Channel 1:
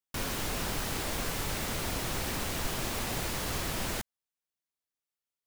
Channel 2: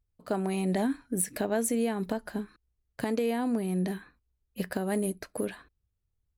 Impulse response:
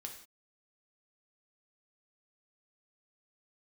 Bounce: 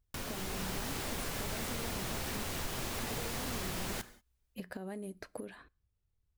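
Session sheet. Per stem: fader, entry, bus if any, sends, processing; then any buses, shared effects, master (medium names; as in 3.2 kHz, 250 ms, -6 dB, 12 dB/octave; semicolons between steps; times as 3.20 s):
-5.0 dB, 0.00 s, send -5 dB, level rider gain up to 6 dB
-0.5 dB, 0.00 s, send -22.5 dB, treble shelf 6.2 kHz -7 dB; compression, threshold -36 dBFS, peak gain reduction 12 dB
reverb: on, pre-delay 3 ms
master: compression 2:1, threshold -41 dBFS, peak gain reduction 9.5 dB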